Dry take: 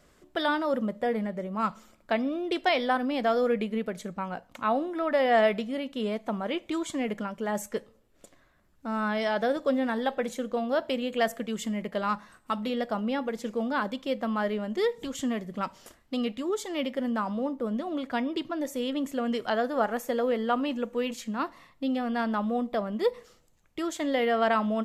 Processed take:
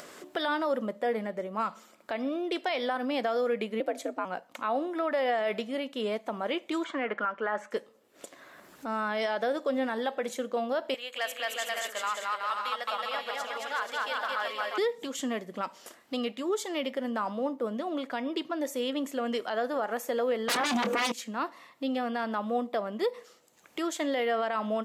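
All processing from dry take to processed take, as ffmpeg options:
-filter_complex "[0:a]asettb=1/sr,asplit=3[s0][s1][s2];[s0]atrim=end=3.804[s3];[s1]atrim=start=3.8:end=4.25,asetpts=PTS-STARTPTS,afade=t=in:d=0.004:c=qsin,afade=t=out:st=0.446:d=0.004:c=qsin,equalizer=f=520:w=1.4:g=7.5,afreqshift=74[s4];[s2]atrim=start=4.246[s5];[s3][s4]acrossfade=d=0.004:c1=hsin:c2=qsin[s6];[s6][s5]acrossfade=d=0.004:c1=qsin:c2=hsin,asettb=1/sr,asplit=3[s7][s8][s9];[s7]atrim=end=6.844[s10];[s8]atrim=start=6.84:end=7.71,asetpts=PTS-STARTPTS,afade=t=in:d=0.004:c=qsin,afade=t=out:st=0.866:d=0.004:c=qsin,highpass=230,lowpass=2700,equalizer=f=1400:w=1.5:g=13[s11];[s9]atrim=start=7.706[s12];[s10][s11]acrossfade=d=0.004:c1=hsin:c2=qsin[s13];[s13][s12]acrossfade=d=0.004:c1=qsin:c2=hsin,asettb=1/sr,asplit=3[s14][s15][s16];[s14]atrim=end=10.944[s17];[s15]atrim=start=10.94:end=14.78,asetpts=PTS-STARTPTS,afade=t=in:d=0.004:c=qsin,afade=t=out:st=3.836:d=0.004:c=qsin,highpass=1000,aecho=1:1:220|374|481.8|557.3|610.1:0.794|0.631|0.501|0.398|0.316,atrim=end_sample=169344,asoftclip=type=hard:threshold=0.126[s18];[s16]atrim=start=14.776[s19];[s17][s18]acrossfade=d=0.004:c1=hsin:c2=qsin[s20];[s20][s19]acrossfade=d=0.004:c1=qsin:c2=hsin,asettb=1/sr,asplit=3[s21][s22][s23];[s21]atrim=end=20.484[s24];[s22]atrim=start=20.48:end=21.12,asetpts=PTS-STARTPTS,afade=t=in:d=0.004:c=qsin,afade=t=out:st=0.636:d=0.004:c=qsin,aeval=exprs='0.211*sin(PI/2*8.91*val(0)/0.211)':c=same,asplit=2[s25][s26];[s26]adelay=25,volume=0.2[s27];[s25][s27]amix=inputs=2:normalize=0,atrim=end_sample=28224[s28];[s23]atrim=start=21.116[s29];[s24][s28]acrossfade=d=0.004:c1=hsin:c2=qsin[s30];[s30][s29]acrossfade=d=0.004:c1=qsin:c2=hsin,highpass=310,acompressor=mode=upward:threshold=0.0141:ratio=2.5,alimiter=limit=0.0794:level=0:latency=1:release=79,volume=1.19"

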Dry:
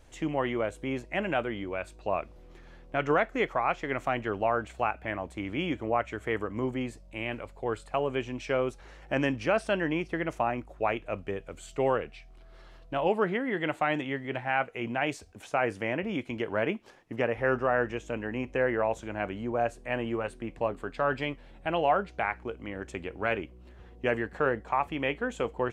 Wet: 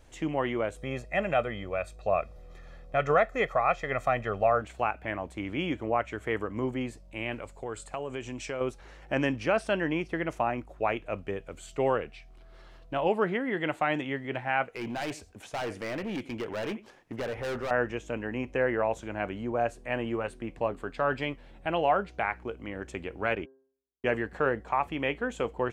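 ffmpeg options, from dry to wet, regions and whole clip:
-filter_complex "[0:a]asettb=1/sr,asplit=3[s0][s1][s2];[s0]atrim=end=0.764[s3];[s1]atrim=start=0.76:end=4.62,asetpts=PTS-STARTPTS,afade=t=in:d=0.004:c=qsin,afade=t=out:st=3.856:d=0.004:c=qsin,bandreject=f=2900:w=7.7,aecho=1:1:1.6:0.66,atrim=end_sample=170226[s4];[s2]atrim=start=4.616[s5];[s3][s4]acrossfade=d=0.004:c1=hsin:c2=qsin[s6];[s6][s5]acrossfade=d=0.004:c1=qsin:c2=hsin,asettb=1/sr,asplit=3[s7][s8][s9];[s7]atrim=end=7.434[s10];[s8]atrim=start=7.43:end=8.61,asetpts=PTS-STARTPTS,afade=t=in:d=0.004:c=qsin,afade=t=out:st=1.176:d=0.004:c=qsin,equalizer=f=7600:w=1.7:g=11,acompressor=threshold=0.0224:ratio=2.5:attack=3.2:release=140:knee=1:detection=peak[s11];[s9]atrim=start=8.606[s12];[s10][s11]acrossfade=d=0.004:c1=hsin:c2=qsin[s13];[s13][s12]acrossfade=d=0.004:c1=qsin:c2=hsin,asettb=1/sr,asplit=3[s14][s15][s16];[s14]atrim=end=14.664[s17];[s15]atrim=start=14.66:end=17.71,asetpts=PTS-STARTPTS,afade=t=in:d=0.004:c=qsin,afade=t=out:st=3.046:d=0.004:c=qsin,aecho=1:1:89:0.0841,atrim=end_sample=134505,asoftclip=type=hard:threshold=0.0316[s18];[s16]atrim=start=17.706[s19];[s17][s18]acrossfade=d=0.004:c1=hsin:c2=qsin[s20];[s20][s19]acrossfade=d=0.004:c1=qsin:c2=hsin,asettb=1/sr,asplit=3[s21][s22][s23];[s21]atrim=end=23.354[s24];[s22]atrim=start=23.35:end=24.15,asetpts=PTS-STARTPTS,afade=t=in:d=0.004:c=qsin,afade=t=out:st=0.796:d=0.004:c=qsin,agate=range=0.00224:threshold=0.0112:ratio=16:release=100:detection=peak,lowpass=7500,bandreject=f=133:t=h:w=4,bandreject=f=266:t=h:w=4,bandreject=f=399:t=h:w=4,bandreject=f=532:t=h:w=4,bandreject=f=665:t=h:w=4,bandreject=f=798:t=h:w=4,bandreject=f=931:t=h:w=4,bandreject=f=1064:t=h:w=4,bandreject=f=1197:t=h:w=4,bandreject=f=1330:t=h:w=4,bandreject=f=1463:t=h:w=4,bandreject=f=1596:t=h:w=4[s25];[s23]atrim=start=24.146[s26];[s24][s25]acrossfade=d=0.004:c1=hsin:c2=qsin[s27];[s27][s26]acrossfade=d=0.004:c1=qsin:c2=hsin"

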